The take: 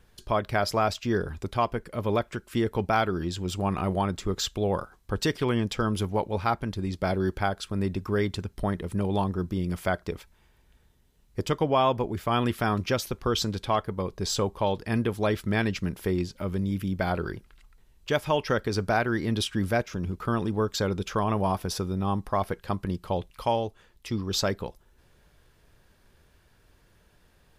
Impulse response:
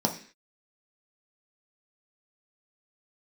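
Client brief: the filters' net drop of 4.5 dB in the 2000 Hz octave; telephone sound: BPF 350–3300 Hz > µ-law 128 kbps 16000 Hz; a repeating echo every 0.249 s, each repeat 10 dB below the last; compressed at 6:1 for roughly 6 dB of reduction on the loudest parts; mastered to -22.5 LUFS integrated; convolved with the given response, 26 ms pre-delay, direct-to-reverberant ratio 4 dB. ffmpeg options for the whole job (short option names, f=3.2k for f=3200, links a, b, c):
-filter_complex "[0:a]equalizer=f=2k:t=o:g=-6,acompressor=threshold=-27dB:ratio=6,aecho=1:1:249|498|747|996:0.316|0.101|0.0324|0.0104,asplit=2[a][b];[1:a]atrim=start_sample=2205,adelay=26[c];[b][c]afir=irnorm=-1:irlink=0,volume=-13.5dB[d];[a][d]amix=inputs=2:normalize=0,highpass=350,lowpass=3.3k,volume=11dB" -ar 16000 -c:a pcm_mulaw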